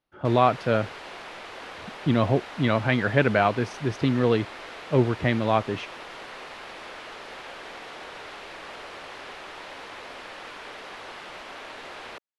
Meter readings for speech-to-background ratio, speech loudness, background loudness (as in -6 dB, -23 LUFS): 15.5 dB, -24.0 LUFS, -39.5 LUFS